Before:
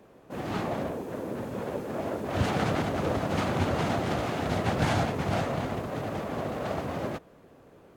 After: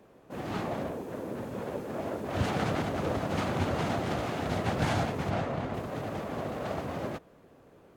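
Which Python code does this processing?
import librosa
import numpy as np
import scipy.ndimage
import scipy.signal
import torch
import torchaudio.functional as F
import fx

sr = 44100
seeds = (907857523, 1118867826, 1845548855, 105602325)

y = fx.lowpass(x, sr, hz=3000.0, slope=6, at=(5.29, 5.73), fade=0.02)
y = F.gain(torch.from_numpy(y), -2.5).numpy()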